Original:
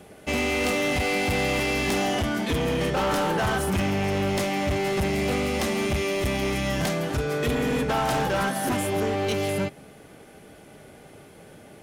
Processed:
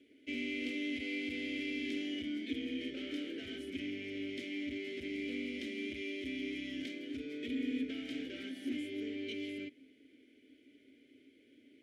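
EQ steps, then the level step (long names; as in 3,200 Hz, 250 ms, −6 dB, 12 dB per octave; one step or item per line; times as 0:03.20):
formant filter i
phaser with its sweep stopped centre 420 Hz, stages 4
0.0 dB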